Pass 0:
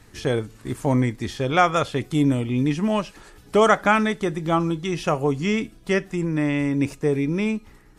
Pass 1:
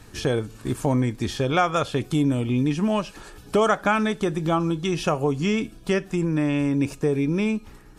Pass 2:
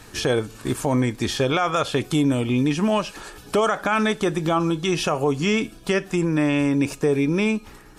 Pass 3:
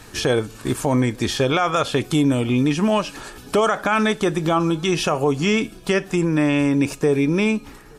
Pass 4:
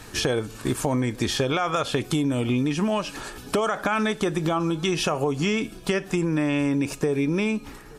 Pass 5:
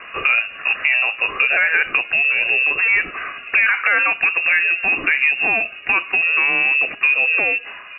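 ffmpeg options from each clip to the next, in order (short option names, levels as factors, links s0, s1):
-af "bandreject=f=2000:w=7.9,acompressor=threshold=0.0501:ratio=2,volume=1.58"
-af "lowshelf=f=280:g=-7.5,alimiter=limit=0.133:level=0:latency=1:release=37,volume=2"
-filter_complex "[0:a]asplit=2[s0][s1];[s1]adelay=874.6,volume=0.0355,highshelf=f=4000:g=-19.7[s2];[s0][s2]amix=inputs=2:normalize=0,volume=1.26"
-af "acompressor=threshold=0.1:ratio=6"
-filter_complex "[0:a]asplit=2[s0][s1];[s1]highpass=f=720:p=1,volume=4.47,asoftclip=type=tanh:threshold=0.316[s2];[s0][s2]amix=inputs=2:normalize=0,lowpass=f=1400:p=1,volume=0.501,lowpass=f=2500:t=q:w=0.5098,lowpass=f=2500:t=q:w=0.6013,lowpass=f=2500:t=q:w=0.9,lowpass=f=2500:t=q:w=2.563,afreqshift=-2900,volume=2"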